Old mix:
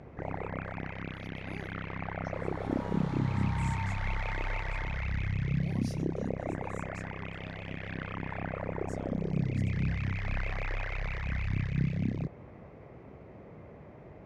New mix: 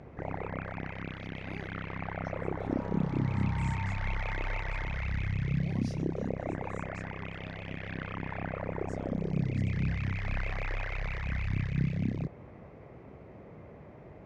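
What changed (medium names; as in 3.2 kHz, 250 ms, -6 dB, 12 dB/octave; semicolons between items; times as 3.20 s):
speech: add peaking EQ 12 kHz -13.5 dB 0.8 oct; second sound: add distance through air 430 m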